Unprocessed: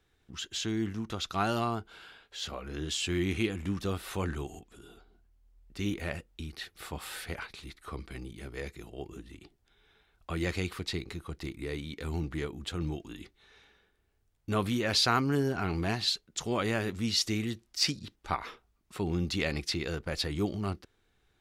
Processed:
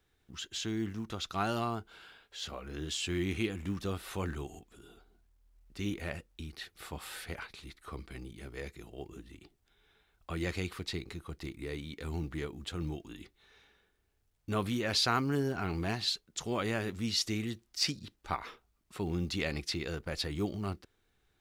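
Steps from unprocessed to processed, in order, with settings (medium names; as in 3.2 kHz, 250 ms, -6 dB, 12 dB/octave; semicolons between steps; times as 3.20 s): companded quantiser 8-bit; trim -3 dB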